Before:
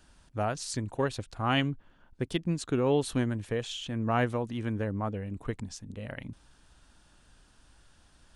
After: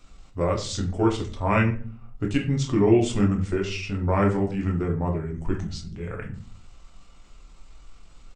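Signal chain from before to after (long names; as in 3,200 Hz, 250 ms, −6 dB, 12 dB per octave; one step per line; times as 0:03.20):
rectangular room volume 36 cubic metres, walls mixed, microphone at 0.68 metres
pitch shifter −3.5 semitones
level +2 dB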